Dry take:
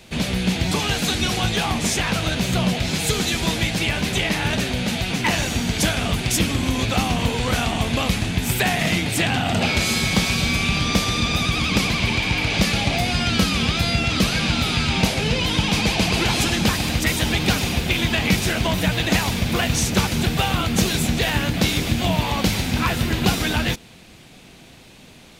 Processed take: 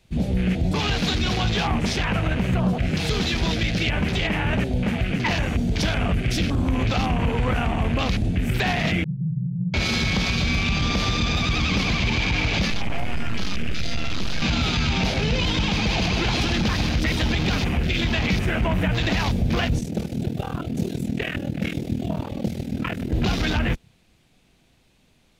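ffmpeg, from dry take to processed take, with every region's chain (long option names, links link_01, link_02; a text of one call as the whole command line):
ffmpeg -i in.wav -filter_complex "[0:a]asettb=1/sr,asplit=3[link_01][link_02][link_03];[link_01]atrim=end=9.044[link_04];[link_02]atrim=start=9.04:end=9.74,asetpts=PTS-STARTPTS,afade=type=in:duration=0.004:curve=qsin,afade=type=out:start_time=0.696:duration=0.004:curve=qsin,asuperpass=centerf=150:order=12:qfactor=2.3,asplit=2[link_05][link_06];[link_06]adelay=38,volume=-5dB[link_07];[link_05][link_07]amix=inputs=2:normalize=0,atrim=end_sample=30870[link_08];[link_03]atrim=start=9.736[link_09];[link_04][link_08]acrossfade=duration=0.004:curve1=hsin:curve2=qsin[link_10];[link_10][link_09]acrossfade=duration=0.004:curve1=qsin:curve2=hsin,asettb=1/sr,asplit=3[link_11][link_12][link_13];[link_11]atrim=end=12.704[link_14];[link_12]atrim=start=12.7:end=14.42,asetpts=PTS-STARTPTS,afade=type=in:duration=0.004:curve=qsin,afade=type=out:start_time=1.716:duration=0.004:curve=qsin,equalizer=frequency=7800:width=0.5:gain=3,aeval=exprs='max(val(0),0)':channel_layout=same[link_15];[link_13]atrim=start=14.416[link_16];[link_14][link_15]acrossfade=duration=0.004:curve1=hsin:curve2=qsin[link_17];[link_17][link_16]acrossfade=duration=0.004:curve1=qsin:curve2=hsin,asettb=1/sr,asplit=3[link_18][link_19][link_20];[link_18]atrim=end=19.794[link_21];[link_19]atrim=start=19.79:end=23.12,asetpts=PTS-STARTPTS,afade=type=in:duration=0.004:curve=qsin,afade=type=out:start_time=3.326:duration=0.004:curve=qsin,highpass=150,aeval=exprs='val(0)*sin(2*PI*20*n/s)':channel_layout=same,equalizer=frequency=960:width=1.8:gain=-8[link_22];[link_20]atrim=start=23.116[link_23];[link_21][link_22]acrossfade=duration=0.004:curve1=hsin:curve2=qsin[link_24];[link_24][link_23]acrossfade=duration=0.004:curve1=qsin:curve2=hsin,afwtdn=0.0447,lowshelf=frequency=68:gain=11,alimiter=limit=-13.5dB:level=0:latency=1:release=23" out.wav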